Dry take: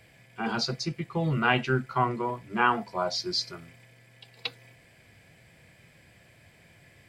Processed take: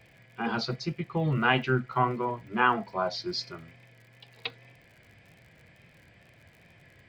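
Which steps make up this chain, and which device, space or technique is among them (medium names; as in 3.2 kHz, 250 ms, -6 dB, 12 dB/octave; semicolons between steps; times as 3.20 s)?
lo-fi chain (low-pass 3.9 kHz 12 dB/octave; wow and flutter; crackle 58 per s -47 dBFS)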